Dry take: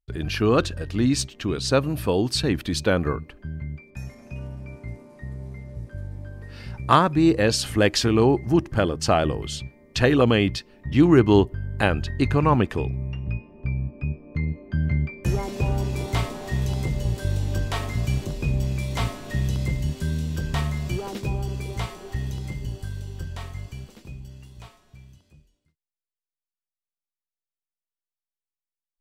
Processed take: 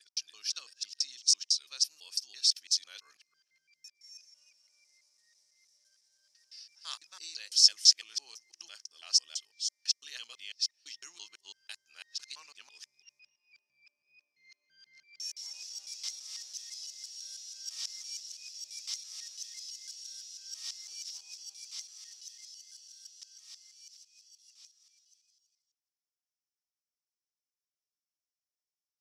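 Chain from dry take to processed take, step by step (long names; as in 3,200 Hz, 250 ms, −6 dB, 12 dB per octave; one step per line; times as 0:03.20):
reversed piece by piece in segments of 167 ms
four-pole ladder band-pass 5,800 Hz, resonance 75%
level +7.5 dB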